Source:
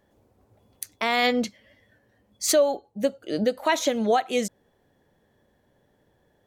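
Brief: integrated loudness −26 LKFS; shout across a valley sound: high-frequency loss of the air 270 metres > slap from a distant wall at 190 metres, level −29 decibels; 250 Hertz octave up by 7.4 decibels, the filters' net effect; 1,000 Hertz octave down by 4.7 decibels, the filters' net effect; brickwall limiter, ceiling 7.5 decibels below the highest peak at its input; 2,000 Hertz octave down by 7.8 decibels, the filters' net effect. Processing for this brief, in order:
parametric band 250 Hz +9 dB
parametric band 1,000 Hz −5.5 dB
parametric band 2,000 Hz −4.5 dB
brickwall limiter −16 dBFS
high-frequency loss of the air 270 metres
slap from a distant wall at 190 metres, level −29 dB
level +1 dB

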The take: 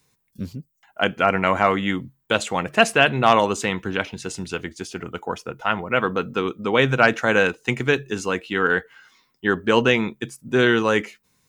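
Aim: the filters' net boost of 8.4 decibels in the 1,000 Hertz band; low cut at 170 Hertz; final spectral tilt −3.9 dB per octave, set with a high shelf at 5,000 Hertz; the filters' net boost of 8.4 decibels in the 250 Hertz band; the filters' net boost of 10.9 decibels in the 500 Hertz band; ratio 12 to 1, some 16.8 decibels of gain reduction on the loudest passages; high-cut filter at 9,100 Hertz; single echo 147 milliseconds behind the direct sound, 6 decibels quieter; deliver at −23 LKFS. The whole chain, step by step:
high-pass filter 170 Hz
low-pass filter 9,100 Hz
parametric band 250 Hz +8.5 dB
parametric band 500 Hz +9 dB
parametric band 1,000 Hz +7.5 dB
high-shelf EQ 5,000 Hz +4 dB
downward compressor 12 to 1, threshold −20 dBFS
single-tap delay 147 ms −6 dB
level +2.5 dB

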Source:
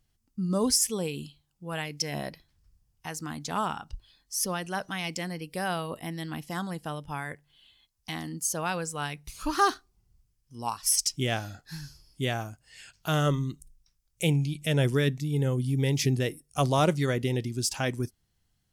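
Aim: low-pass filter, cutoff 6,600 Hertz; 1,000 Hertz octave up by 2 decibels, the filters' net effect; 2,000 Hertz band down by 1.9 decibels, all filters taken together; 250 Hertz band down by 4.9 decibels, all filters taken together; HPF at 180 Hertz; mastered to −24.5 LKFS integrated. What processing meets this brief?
high-pass filter 180 Hz
low-pass filter 6,600 Hz
parametric band 250 Hz −4.5 dB
parametric band 1,000 Hz +4 dB
parametric band 2,000 Hz −4 dB
level +7.5 dB

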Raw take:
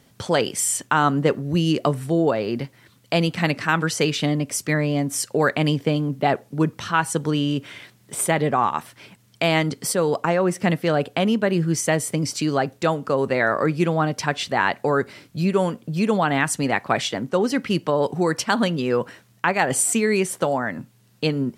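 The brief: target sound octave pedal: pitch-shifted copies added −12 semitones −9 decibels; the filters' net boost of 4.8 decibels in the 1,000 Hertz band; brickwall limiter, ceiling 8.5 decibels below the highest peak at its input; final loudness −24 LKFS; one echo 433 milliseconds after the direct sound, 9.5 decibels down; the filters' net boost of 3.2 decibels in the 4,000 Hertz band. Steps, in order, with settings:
parametric band 1,000 Hz +6 dB
parametric band 4,000 Hz +4 dB
brickwall limiter −9.5 dBFS
single-tap delay 433 ms −9.5 dB
pitch-shifted copies added −12 semitones −9 dB
level −2.5 dB

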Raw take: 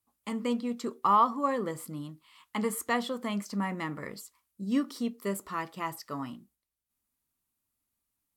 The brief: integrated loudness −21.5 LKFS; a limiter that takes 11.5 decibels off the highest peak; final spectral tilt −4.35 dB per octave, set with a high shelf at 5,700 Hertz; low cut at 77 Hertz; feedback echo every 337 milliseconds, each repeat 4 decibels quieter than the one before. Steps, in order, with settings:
high-pass filter 77 Hz
high-shelf EQ 5,700 Hz +8 dB
brickwall limiter −24.5 dBFS
repeating echo 337 ms, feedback 63%, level −4 dB
level +12 dB

